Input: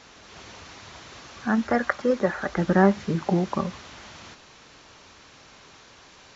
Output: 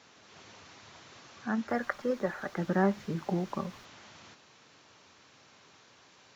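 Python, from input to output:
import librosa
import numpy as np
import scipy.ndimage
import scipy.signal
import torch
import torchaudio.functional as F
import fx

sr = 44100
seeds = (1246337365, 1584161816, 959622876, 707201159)

y = scipy.signal.sosfilt(scipy.signal.butter(4, 90.0, 'highpass', fs=sr, output='sos'), x)
y = fx.dmg_noise_colour(y, sr, seeds[0], colour='pink', level_db=-55.0, at=(1.67, 3.84), fade=0.02)
y = y * librosa.db_to_amplitude(-8.5)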